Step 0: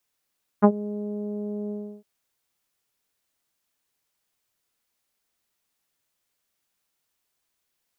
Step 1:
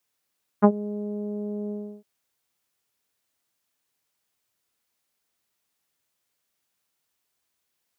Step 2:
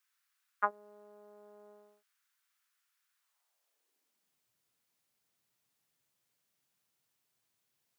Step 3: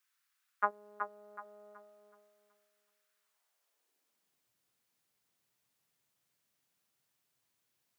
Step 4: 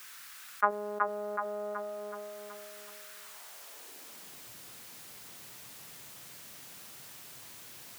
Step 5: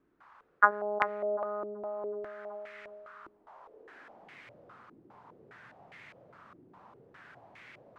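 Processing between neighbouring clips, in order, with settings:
high-pass 53 Hz
high-pass sweep 1.4 kHz -> 120 Hz, 3.14–4.50 s; trim -3.5 dB
feedback echo behind a low-pass 374 ms, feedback 32%, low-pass 2.8 kHz, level -7 dB
level flattener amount 50%; trim +4 dB
step-sequenced low-pass 4.9 Hz 340–2100 Hz; trim -1.5 dB

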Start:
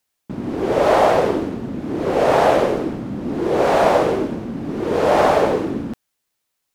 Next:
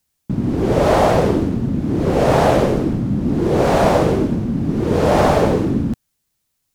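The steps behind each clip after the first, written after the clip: tone controls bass +14 dB, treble +5 dB; trim -1 dB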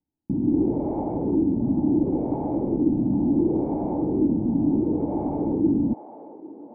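peak limiter -13.5 dBFS, peak gain reduction 11 dB; cascade formant filter u; feedback echo behind a band-pass 800 ms, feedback 55%, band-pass 960 Hz, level -9.5 dB; trim +6 dB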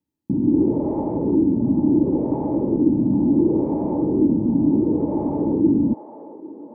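comb of notches 730 Hz; trim +4 dB

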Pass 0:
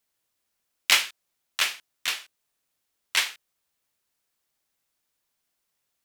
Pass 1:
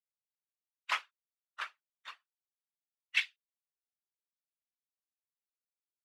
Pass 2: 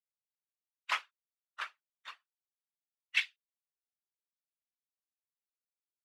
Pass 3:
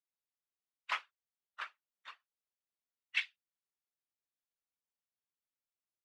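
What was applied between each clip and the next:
expander on every frequency bin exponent 2; whisper effect; band-pass sweep 1.1 kHz -> 6.5 kHz, 2.60–3.90 s
no audible change
treble shelf 6.7 kHz -11 dB; trim -2.5 dB

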